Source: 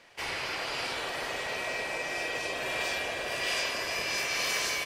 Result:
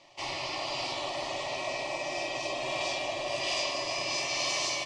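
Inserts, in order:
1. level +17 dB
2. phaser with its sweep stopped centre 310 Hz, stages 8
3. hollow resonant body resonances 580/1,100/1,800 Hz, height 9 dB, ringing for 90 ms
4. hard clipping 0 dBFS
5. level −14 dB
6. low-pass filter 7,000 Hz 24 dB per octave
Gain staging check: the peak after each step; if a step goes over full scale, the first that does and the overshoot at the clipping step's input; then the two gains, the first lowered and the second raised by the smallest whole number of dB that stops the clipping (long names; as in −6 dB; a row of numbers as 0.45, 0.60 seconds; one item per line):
−1.0, −3.5, −3.0, −3.0, −17.0, −18.5 dBFS
no step passes full scale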